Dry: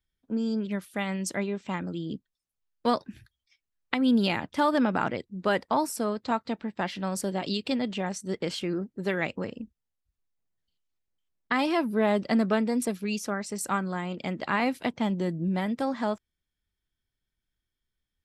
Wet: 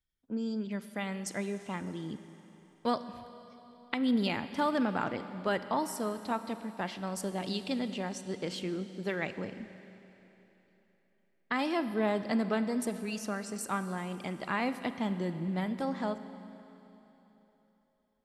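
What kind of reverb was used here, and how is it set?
four-comb reverb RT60 3.5 s, combs from 33 ms, DRR 11 dB
level −5.5 dB

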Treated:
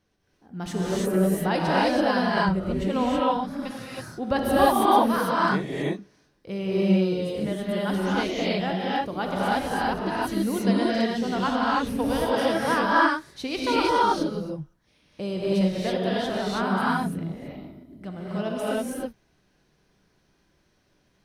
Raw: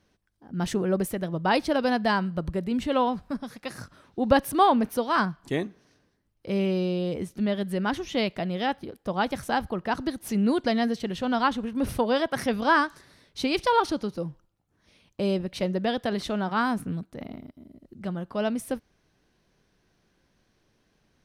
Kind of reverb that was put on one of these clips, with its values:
reverb whose tail is shaped and stops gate 350 ms rising, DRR −6.5 dB
level −5 dB

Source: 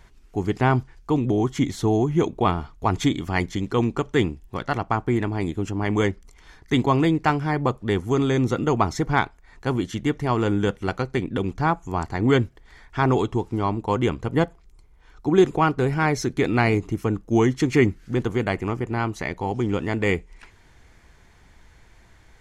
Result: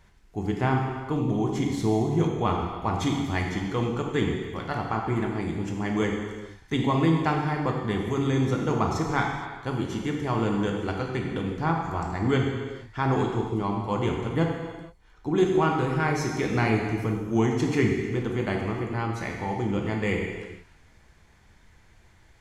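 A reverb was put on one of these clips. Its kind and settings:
reverb whose tail is shaped and stops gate 500 ms falling, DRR 0 dB
level −6.5 dB

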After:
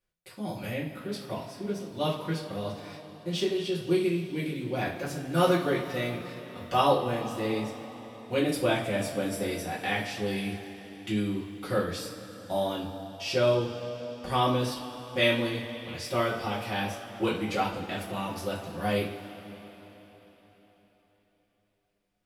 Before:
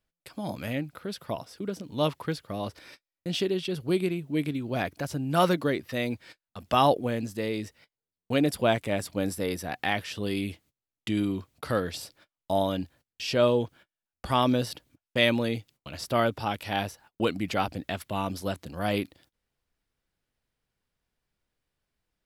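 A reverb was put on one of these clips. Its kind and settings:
coupled-rooms reverb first 0.33 s, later 4.3 s, from −19 dB, DRR −7.5 dB
level −8.5 dB

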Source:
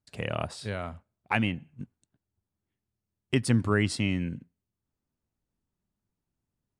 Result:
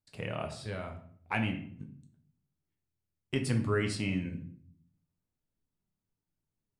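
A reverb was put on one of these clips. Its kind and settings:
rectangular room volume 77 cubic metres, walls mixed, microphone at 0.52 metres
level −6.5 dB

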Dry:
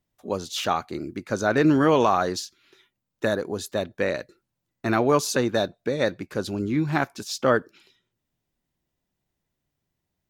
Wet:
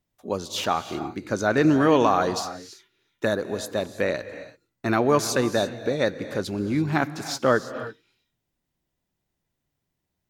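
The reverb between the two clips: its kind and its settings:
reverb whose tail is shaped and stops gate 360 ms rising, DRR 11.5 dB

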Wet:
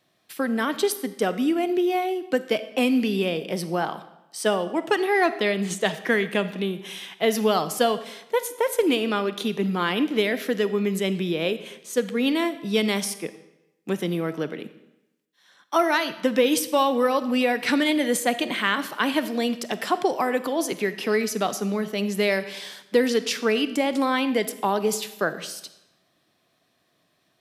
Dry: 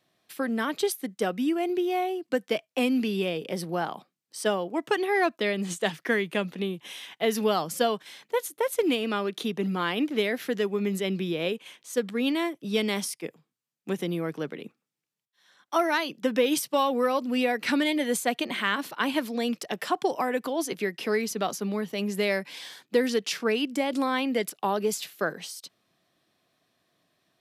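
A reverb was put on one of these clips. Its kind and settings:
comb and all-pass reverb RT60 0.94 s, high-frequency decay 0.9×, pre-delay 5 ms, DRR 12.5 dB
level +3.5 dB

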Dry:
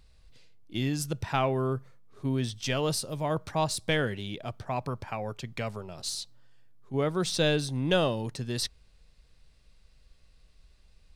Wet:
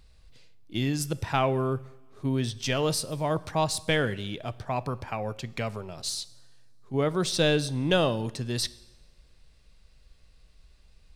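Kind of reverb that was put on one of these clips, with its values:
coupled-rooms reverb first 0.96 s, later 2.6 s, from −19 dB, DRR 17.5 dB
level +2 dB

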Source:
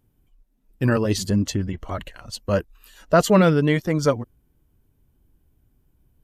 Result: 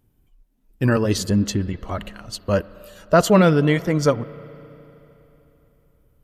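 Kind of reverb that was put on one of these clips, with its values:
spring reverb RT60 3.4 s, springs 34/44 ms, chirp 30 ms, DRR 18 dB
level +1.5 dB

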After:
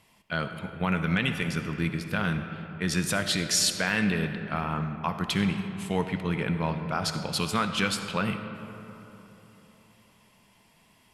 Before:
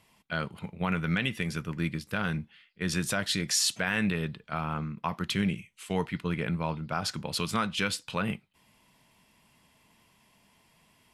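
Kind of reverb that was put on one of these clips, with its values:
comb and all-pass reverb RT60 3.5 s, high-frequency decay 0.45×, pre-delay 25 ms, DRR 7.5 dB
level +2 dB

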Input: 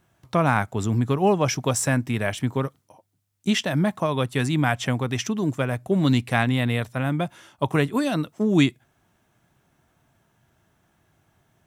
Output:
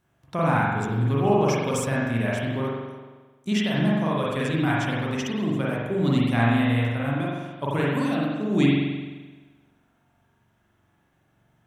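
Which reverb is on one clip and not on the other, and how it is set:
spring reverb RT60 1.3 s, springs 43 ms, chirp 60 ms, DRR −5.5 dB
level −7.5 dB

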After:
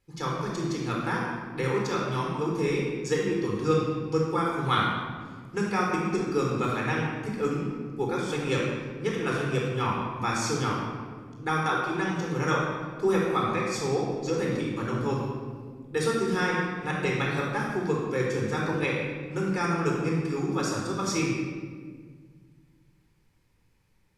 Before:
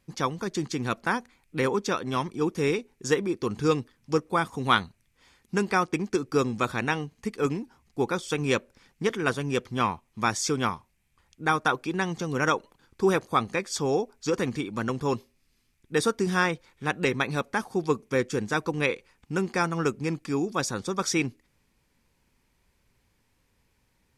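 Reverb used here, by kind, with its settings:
rectangular room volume 2,000 cubic metres, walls mixed, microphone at 4.1 metres
level −8 dB

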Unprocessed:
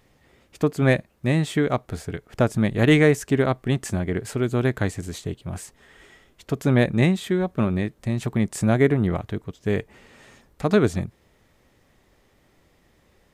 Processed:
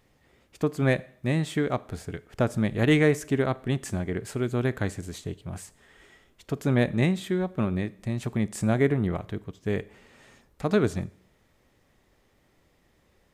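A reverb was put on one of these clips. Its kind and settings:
four-comb reverb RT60 0.59 s, combs from 29 ms, DRR 19 dB
level −4.5 dB

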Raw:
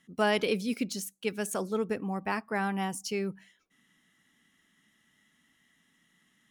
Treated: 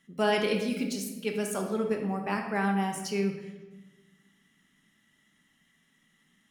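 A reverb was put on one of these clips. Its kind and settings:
rectangular room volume 680 cubic metres, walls mixed, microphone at 1.2 metres
level −1.5 dB

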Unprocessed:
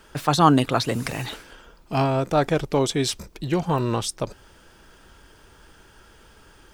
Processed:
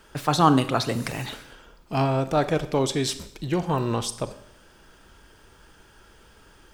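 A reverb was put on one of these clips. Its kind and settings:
four-comb reverb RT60 0.7 s, combs from 30 ms, DRR 12 dB
level −2 dB

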